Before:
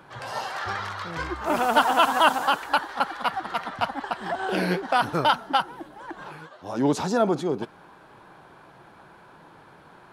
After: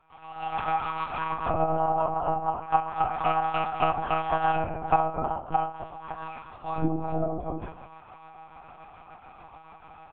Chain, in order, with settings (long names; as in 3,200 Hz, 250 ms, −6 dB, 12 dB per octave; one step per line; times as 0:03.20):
repeating echo 65 ms, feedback 58%, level −23 dB
treble cut that deepens with the level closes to 470 Hz, closed at −19 dBFS
formant filter a
low shelf with overshoot 350 Hz +6.5 dB, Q 3
automatic gain control gain up to 13.5 dB
tilt shelving filter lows −6.5 dB, about 710 Hz
double-tracking delay 18 ms −7 dB
rectangular room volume 840 cubic metres, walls furnished, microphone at 2.1 metres
amplitude tremolo 6.9 Hz, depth 34%
one-pitch LPC vocoder at 8 kHz 160 Hz
level −4.5 dB